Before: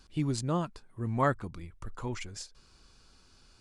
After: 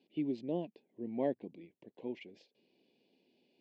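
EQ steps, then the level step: high-pass 230 Hz 24 dB/octave; Butterworth band-stop 1.3 kHz, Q 0.59; low-pass 2.7 kHz 24 dB/octave; -1.0 dB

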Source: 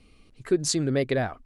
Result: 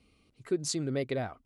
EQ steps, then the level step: high-pass 52 Hz; band-stop 1.7 kHz, Q 9.9; -7.0 dB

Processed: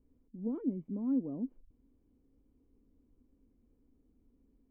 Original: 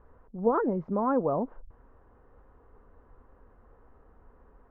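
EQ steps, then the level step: cascade formant filter i; 0.0 dB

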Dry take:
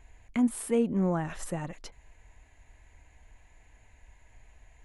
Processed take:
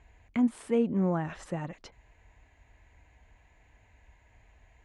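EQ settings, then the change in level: high-pass 44 Hz; distance through air 100 m; 0.0 dB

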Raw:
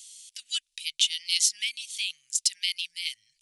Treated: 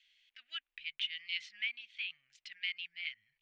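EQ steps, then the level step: low-pass 2 kHz 24 dB/octave; bass shelf 120 Hz -10 dB; +4.0 dB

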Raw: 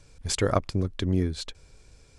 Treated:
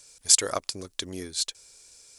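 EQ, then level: tone controls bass -11 dB, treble +14 dB; tilt EQ +1.5 dB/octave; -3.5 dB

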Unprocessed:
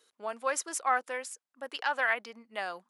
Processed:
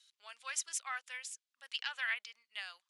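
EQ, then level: dynamic bell 4.6 kHz, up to -5 dB, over -53 dBFS, Q 1.8; ladder band-pass 4.5 kHz, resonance 20%; +14.0 dB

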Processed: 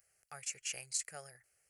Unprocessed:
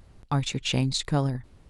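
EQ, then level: differentiator; static phaser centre 1 kHz, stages 6; +2.0 dB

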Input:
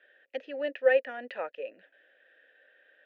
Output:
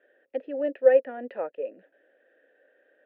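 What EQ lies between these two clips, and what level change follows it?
band-pass filter 350 Hz, Q 0.64; bass shelf 380 Hz +7 dB; +4.0 dB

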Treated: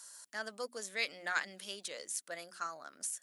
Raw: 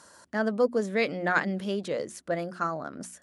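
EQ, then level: differentiator; +5.0 dB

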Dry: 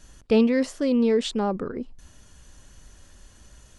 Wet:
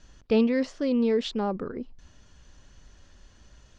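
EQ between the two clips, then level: low-pass 5.9 kHz 24 dB/octave; -3.0 dB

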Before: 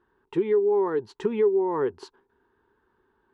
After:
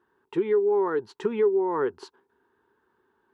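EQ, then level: dynamic bell 1.4 kHz, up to +6 dB, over -50 dBFS, Q 3.2; high-pass 64 Hz; bass shelf 120 Hz -8.5 dB; 0.0 dB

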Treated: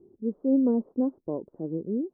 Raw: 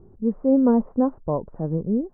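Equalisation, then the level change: band-pass filter 340 Hz, Q 2.5; 0.0 dB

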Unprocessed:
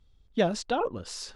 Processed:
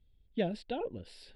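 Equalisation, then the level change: treble shelf 5 kHz -7.5 dB; static phaser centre 2.8 kHz, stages 4; -5.0 dB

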